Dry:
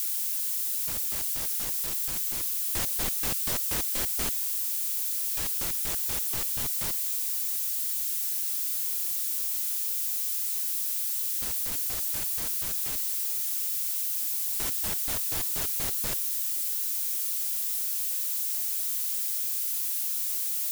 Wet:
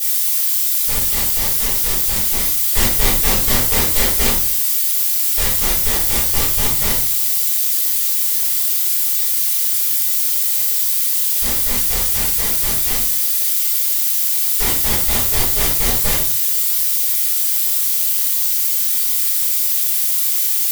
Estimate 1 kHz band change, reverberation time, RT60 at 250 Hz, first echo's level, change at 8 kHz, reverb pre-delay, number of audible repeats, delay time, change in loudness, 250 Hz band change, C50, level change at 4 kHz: +15.0 dB, 0.50 s, 0.60 s, none, +12.0 dB, 3 ms, none, none, +13.0 dB, +15.5 dB, 4.5 dB, +14.0 dB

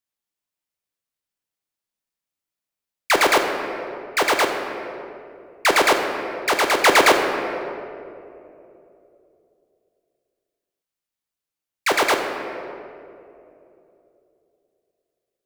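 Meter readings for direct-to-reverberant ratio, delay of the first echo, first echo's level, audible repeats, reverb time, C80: 3.5 dB, none, none, none, 2.9 s, 6.0 dB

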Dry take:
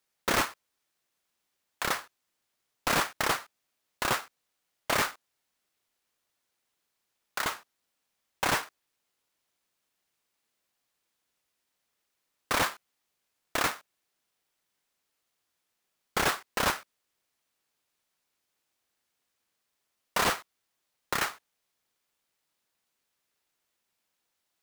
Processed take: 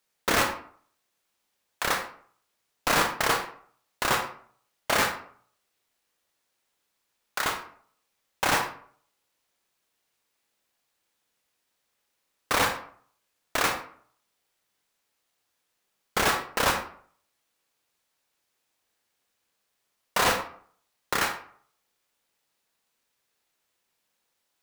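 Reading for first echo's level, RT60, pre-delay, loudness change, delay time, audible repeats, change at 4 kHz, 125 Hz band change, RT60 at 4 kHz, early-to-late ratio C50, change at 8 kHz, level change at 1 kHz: none, 0.55 s, 24 ms, +3.5 dB, none, none, +3.5 dB, +3.0 dB, 0.30 s, 8.0 dB, +3.0 dB, +4.0 dB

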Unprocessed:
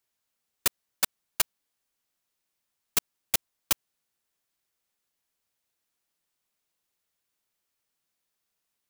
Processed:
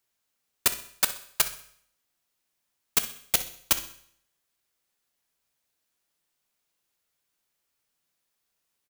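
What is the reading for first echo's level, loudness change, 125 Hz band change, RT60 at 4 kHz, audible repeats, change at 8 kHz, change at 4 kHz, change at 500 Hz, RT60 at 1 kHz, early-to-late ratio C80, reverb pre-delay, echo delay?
-15.5 dB, +2.5 dB, +2.5 dB, 0.60 s, 1, +2.5 dB, +2.5 dB, +2.5 dB, 0.60 s, 16.5 dB, 7 ms, 63 ms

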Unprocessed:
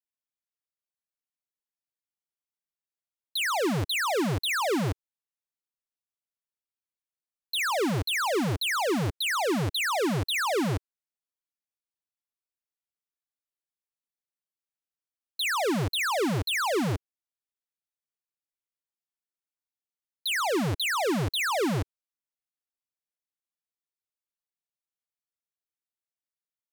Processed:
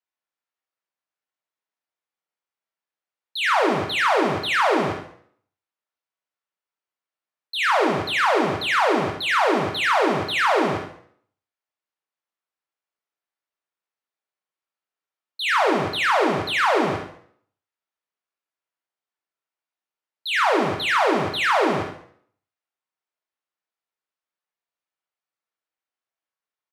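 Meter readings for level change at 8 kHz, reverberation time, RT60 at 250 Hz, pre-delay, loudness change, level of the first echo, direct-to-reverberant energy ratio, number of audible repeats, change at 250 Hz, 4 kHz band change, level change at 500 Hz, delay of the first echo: -4.0 dB, 0.60 s, 0.60 s, 6 ms, +6.5 dB, -8.5 dB, 1.0 dB, 1, +3.0 dB, +3.0 dB, +7.0 dB, 71 ms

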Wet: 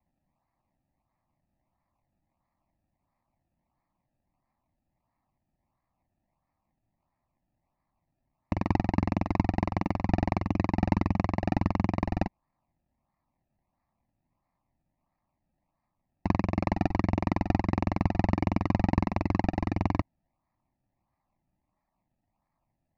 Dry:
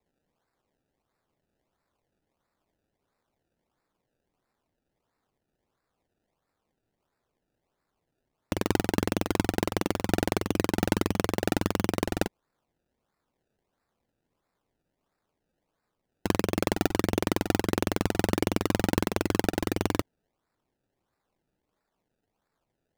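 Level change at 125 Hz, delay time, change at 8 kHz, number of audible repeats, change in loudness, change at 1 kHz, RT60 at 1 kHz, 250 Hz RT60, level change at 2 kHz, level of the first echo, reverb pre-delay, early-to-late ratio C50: +4.0 dB, none, under -20 dB, none, -0.5 dB, +1.0 dB, none, none, -5.5 dB, none, none, none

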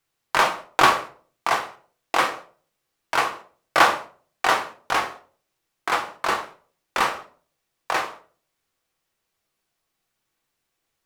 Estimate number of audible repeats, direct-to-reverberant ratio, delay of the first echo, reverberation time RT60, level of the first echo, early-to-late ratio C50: none, 4.5 dB, none, 0.45 s, none, 13.0 dB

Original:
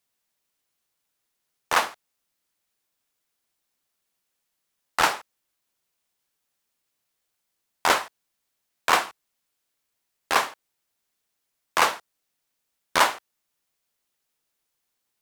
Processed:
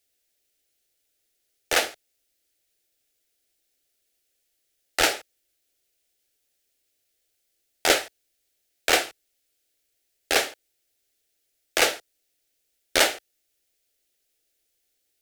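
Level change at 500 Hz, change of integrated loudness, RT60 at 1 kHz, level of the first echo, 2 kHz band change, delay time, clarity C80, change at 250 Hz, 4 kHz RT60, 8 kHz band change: +4.0 dB, +0.5 dB, none, none, +0.5 dB, none, none, +3.5 dB, none, +5.0 dB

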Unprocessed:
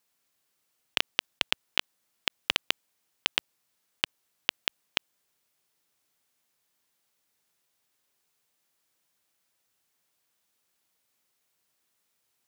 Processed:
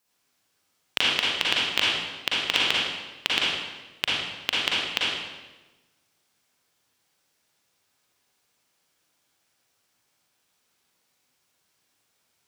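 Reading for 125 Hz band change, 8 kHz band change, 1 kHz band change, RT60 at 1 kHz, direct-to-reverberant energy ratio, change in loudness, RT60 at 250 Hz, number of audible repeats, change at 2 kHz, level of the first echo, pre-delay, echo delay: +8.5 dB, +6.0 dB, +7.5 dB, 1.1 s, -6.5 dB, +6.0 dB, 1.3 s, none, +7.0 dB, none, 37 ms, none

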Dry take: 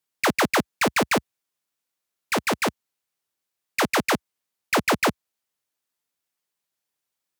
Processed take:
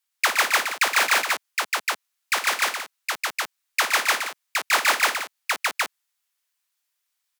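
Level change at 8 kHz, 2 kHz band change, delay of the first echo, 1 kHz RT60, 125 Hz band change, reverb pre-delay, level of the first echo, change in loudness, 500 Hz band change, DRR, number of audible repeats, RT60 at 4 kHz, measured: +6.0 dB, +5.0 dB, 55 ms, none, under -25 dB, none, -10.0 dB, +1.0 dB, -7.0 dB, none, 4, none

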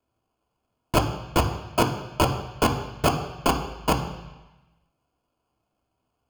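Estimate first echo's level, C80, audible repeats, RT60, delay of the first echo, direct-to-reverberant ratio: none, 11.0 dB, none, 1.1 s, none, 2.0 dB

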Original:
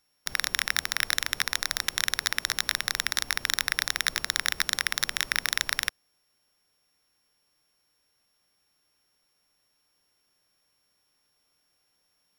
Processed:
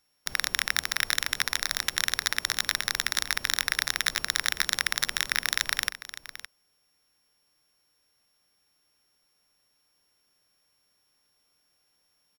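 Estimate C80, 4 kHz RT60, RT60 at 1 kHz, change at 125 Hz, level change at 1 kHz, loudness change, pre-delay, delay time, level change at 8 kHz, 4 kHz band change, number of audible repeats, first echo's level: none, none, none, 0.0 dB, 0.0 dB, 0.0 dB, none, 0.564 s, 0.0 dB, 0.0 dB, 1, -14.0 dB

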